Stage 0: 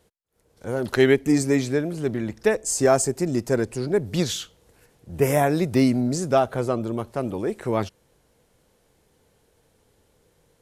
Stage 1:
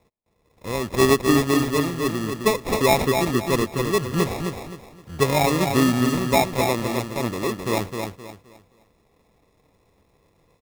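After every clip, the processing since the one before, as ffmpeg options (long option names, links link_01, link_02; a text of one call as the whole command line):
ffmpeg -i in.wav -filter_complex "[0:a]acrusher=samples=29:mix=1:aa=0.000001,asplit=2[link_01][link_02];[link_02]aecho=0:1:261|522|783|1044:0.531|0.159|0.0478|0.0143[link_03];[link_01][link_03]amix=inputs=2:normalize=0" out.wav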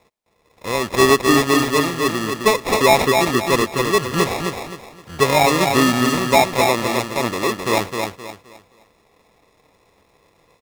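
ffmpeg -i in.wav -filter_complex "[0:a]asplit=2[link_01][link_02];[link_02]highpass=frequency=720:poles=1,volume=9dB,asoftclip=type=tanh:threshold=-5dB[link_03];[link_01][link_03]amix=inputs=2:normalize=0,lowpass=frequency=8000:poles=1,volume=-6dB,volume=4dB" out.wav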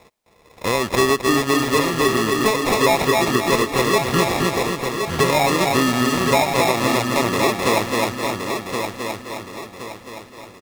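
ffmpeg -i in.wav -af "acompressor=threshold=-26dB:ratio=3,aecho=1:1:1070|2140|3210|4280:0.501|0.18|0.065|0.0234,volume=8dB" out.wav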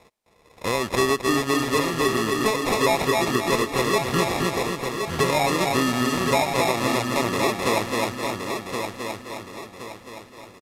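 ffmpeg -i in.wav -af "aresample=32000,aresample=44100,volume=-4dB" out.wav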